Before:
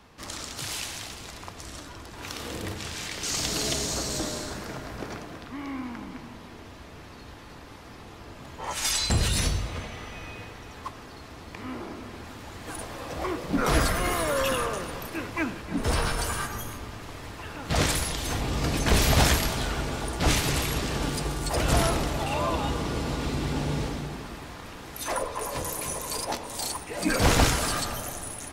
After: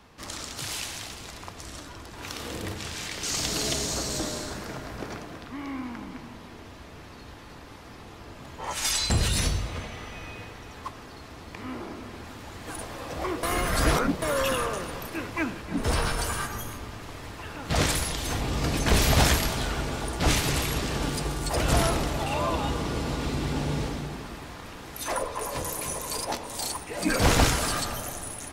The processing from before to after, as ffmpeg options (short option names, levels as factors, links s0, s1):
-filter_complex "[0:a]asplit=3[s0][s1][s2];[s0]atrim=end=13.432[s3];[s1]atrim=start=13.428:end=14.222,asetpts=PTS-STARTPTS,areverse[s4];[s2]atrim=start=14.218[s5];[s3][s4]acrossfade=d=0.004:c1=hsin:c2=hsin[s6];[s6][s5]acrossfade=d=0.004:c1=hsin:c2=hsin"